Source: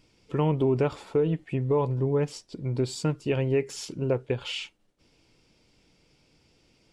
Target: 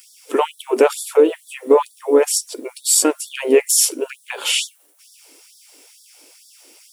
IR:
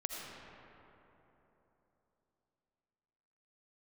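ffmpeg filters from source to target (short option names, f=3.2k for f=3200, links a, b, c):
-filter_complex "[0:a]equalizer=f=5.7k:w=5.2:g=10.5,acontrast=70,asplit=2[a][b];[b]asetrate=52444,aresample=44100,atempo=0.840896,volume=-15dB[c];[a][c]amix=inputs=2:normalize=0,aexciter=amount=11.8:drive=5:freq=8.2k,afftfilt=real='re*gte(b*sr/1024,240*pow(3400/240,0.5+0.5*sin(2*PI*2.2*pts/sr)))':imag='im*gte(b*sr/1024,240*pow(3400/240,0.5+0.5*sin(2*PI*2.2*pts/sr)))':win_size=1024:overlap=0.75,volume=7dB"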